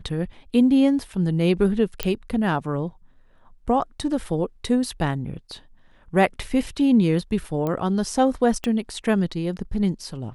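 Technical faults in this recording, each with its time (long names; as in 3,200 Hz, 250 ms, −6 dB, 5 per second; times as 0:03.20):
0:02.03: click −7 dBFS
0:07.67: click −15 dBFS
0:08.64: click −13 dBFS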